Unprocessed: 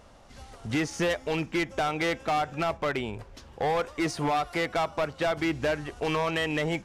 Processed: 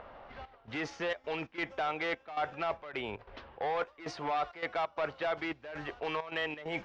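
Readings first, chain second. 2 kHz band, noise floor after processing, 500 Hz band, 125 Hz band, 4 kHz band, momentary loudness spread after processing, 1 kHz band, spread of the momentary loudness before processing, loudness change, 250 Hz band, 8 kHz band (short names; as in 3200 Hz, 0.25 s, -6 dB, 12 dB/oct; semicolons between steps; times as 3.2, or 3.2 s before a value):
-6.0 dB, -62 dBFS, -7.5 dB, -14.5 dB, -7.5 dB, 8 LU, -6.0 dB, 4 LU, -7.5 dB, -12.0 dB, under -15 dB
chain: air absorption 84 m; low-pass opened by the level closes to 2100 Hz, open at -26 dBFS; reverse; compressor 6:1, threshold -36 dBFS, peak gain reduction 11 dB; reverse; three-band isolator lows -12 dB, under 410 Hz, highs -19 dB, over 5100 Hz; upward compressor, threshold -53 dBFS; step gate "xxxx..xxxx.xx.x" 133 bpm -12 dB; gain +6 dB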